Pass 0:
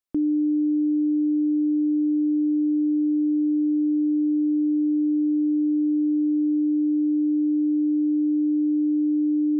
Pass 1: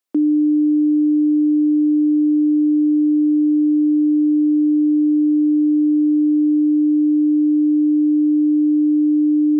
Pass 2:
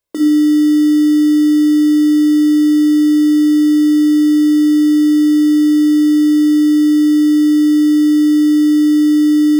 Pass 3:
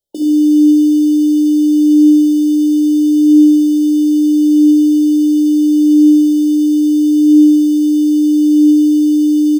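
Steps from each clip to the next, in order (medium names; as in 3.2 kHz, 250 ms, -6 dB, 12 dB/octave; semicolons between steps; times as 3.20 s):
elliptic high-pass 220 Hz; trim +7.5 dB
in parallel at -9 dB: sample-and-hold 27×; on the sum: reverberation RT60 0.40 s, pre-delay 24 ms, DRR 6.5 dB
flange 0.25 Hz, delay 5 ms, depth 5 ms, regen +71%; brick-wall FIR band-stop 890–2900 Hz; on a send: feedback delay 73 ms, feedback 55%, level -6.5 dB; on the sum: trim +2 dB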